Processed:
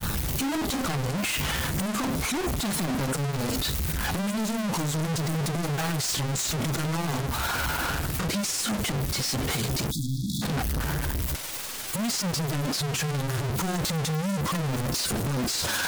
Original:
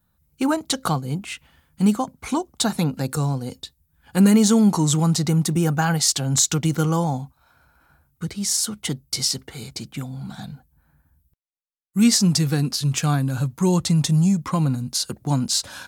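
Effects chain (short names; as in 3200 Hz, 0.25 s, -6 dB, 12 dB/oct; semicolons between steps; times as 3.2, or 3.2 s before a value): infinite clipping; grains 0.1 s, spray 14 ms, pitch spread up and down by 0 st; spectral delete 9.91–10.42, 330–3300 Hz; gain -4 dB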